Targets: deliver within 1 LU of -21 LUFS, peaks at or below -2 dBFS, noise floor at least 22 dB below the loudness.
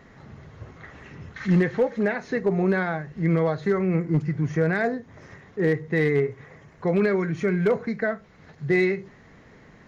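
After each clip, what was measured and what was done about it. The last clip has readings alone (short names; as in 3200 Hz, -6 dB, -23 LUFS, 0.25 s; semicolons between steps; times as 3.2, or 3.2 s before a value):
clipped 0.2%; flat tops at -13.5 dBFS; loudness -24.5 LUFS; peak -13.5 dBFS; loudness target -21.0 LUFS
-> clip repair -13.5 dBFS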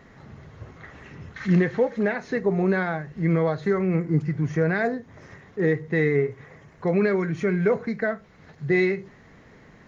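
clipped 0.0%; loudness -24.0 LUFS; peak -10.0 dBFS; loudness target -21.0 LUFS
-> gain +3 dB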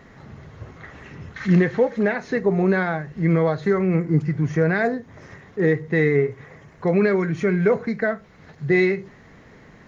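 loudness -21.0 LUFS; peak -7.0 dBFS; noise floor -49 dBFS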